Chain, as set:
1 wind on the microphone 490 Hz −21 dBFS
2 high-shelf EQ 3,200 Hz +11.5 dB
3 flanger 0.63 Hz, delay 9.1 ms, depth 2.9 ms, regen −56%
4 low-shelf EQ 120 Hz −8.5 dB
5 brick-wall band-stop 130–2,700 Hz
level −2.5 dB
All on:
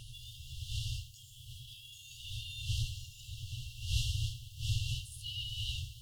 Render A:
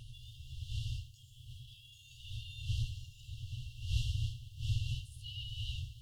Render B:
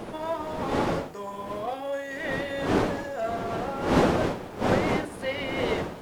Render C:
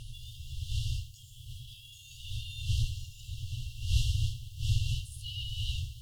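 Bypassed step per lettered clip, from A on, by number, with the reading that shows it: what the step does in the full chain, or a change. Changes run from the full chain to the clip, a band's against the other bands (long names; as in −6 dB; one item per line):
2, 125 Hz band +6.0 dB
5, 2 kHz band +17.5 dB
4, 125 Hz band +5.0 dB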